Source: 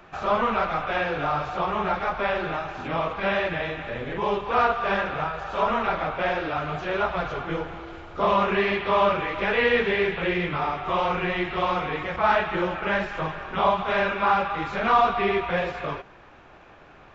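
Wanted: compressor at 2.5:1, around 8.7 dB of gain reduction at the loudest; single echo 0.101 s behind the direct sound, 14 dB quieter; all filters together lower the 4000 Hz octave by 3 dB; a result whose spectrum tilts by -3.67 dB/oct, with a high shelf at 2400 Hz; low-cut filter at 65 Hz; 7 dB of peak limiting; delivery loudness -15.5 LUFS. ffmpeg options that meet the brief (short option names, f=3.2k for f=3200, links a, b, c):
-af "highpass=65,highshelf=f=2.4k:g=4.5,equalizer=f=4k:t=o:g=-8.5,acompressor=threshold=-29dB:ratio=2.5,alimiter=limit=-24dB:level=0:latency=1,aecho=1:1:101:0.2,volume=17.5dB"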